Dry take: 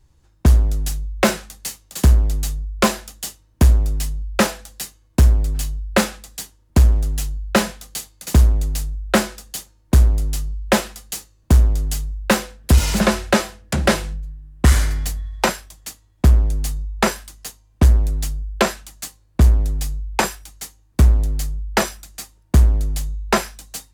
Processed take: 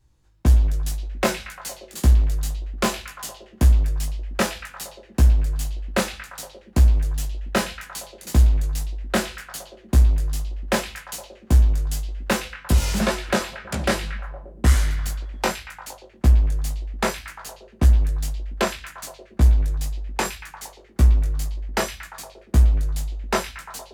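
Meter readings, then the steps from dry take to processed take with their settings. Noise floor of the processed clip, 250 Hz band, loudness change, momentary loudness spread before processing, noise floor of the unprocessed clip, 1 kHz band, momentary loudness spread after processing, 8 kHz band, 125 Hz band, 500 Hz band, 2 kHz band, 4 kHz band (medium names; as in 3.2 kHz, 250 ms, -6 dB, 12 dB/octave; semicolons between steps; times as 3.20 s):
-50 dBFS, -5.5 dB, -3.0 dB, 16 LU, -57 dBFS, -4.5 dB, 17 LU, -5.0 dB, -3.0 dB, -4.5 dB, -4.0 dB, -4.5 dB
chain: chorus 1.9 Hz, delay 16 ms, depth 5.8 ms; on a send: repeats whose band climbs or falls 116 ms, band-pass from 3.1 kHz, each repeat -0.7 oct, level -7 dB; on the sum: trim -2 dB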